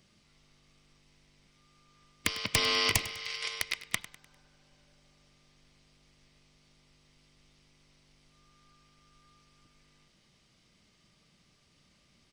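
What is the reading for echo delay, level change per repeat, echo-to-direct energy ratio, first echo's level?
0.1 s, -7.5 dB, -15.0 dB, -16.0 dB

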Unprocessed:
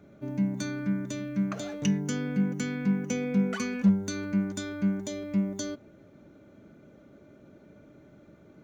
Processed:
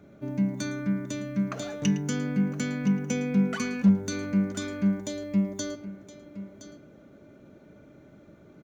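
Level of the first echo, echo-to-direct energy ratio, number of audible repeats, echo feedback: -16.0 dB, -12.0 dB, 3, no steady repeat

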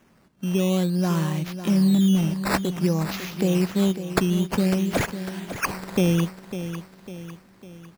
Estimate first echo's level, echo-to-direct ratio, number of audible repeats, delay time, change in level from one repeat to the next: -11.0 dB, -10.0 dB, 4, 0.551 s, -6.5 dB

